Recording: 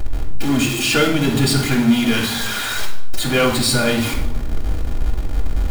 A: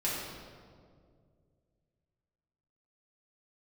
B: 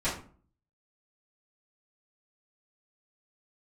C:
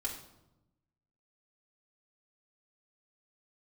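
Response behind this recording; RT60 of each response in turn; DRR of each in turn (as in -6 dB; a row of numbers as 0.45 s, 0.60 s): C; 2.1 s, 0.45 s, 0.95 s; -8.0 dB, -13.5 dB, -3.0 dB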